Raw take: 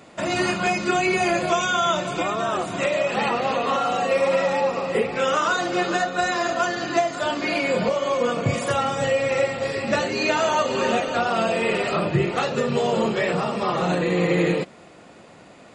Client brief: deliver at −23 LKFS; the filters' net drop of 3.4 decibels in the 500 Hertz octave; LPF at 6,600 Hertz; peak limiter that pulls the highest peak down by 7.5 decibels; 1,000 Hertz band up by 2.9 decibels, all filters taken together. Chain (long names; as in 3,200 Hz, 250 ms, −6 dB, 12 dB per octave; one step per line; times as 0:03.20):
low-pass filter 6,600 Hz
parametric band 500 Hz −6.5 dB
parametric band 1,000 Hz +6.5 dB
level +1 dB
brickwall limiter −14 dBFS